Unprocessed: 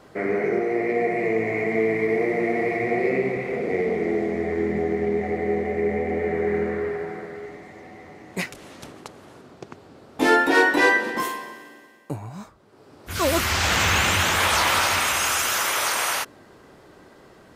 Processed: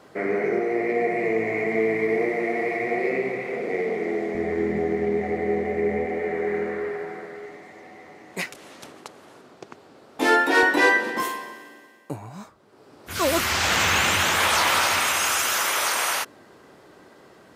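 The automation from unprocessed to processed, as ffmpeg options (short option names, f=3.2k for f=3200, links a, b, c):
-af "asetnsamples=n=441:p=0,asendcmd='2.29 highpass f 350;4.35 highpass f 89;6.06 highpass f 330;10.63 highpass f 160',highpass=f=160:p=1"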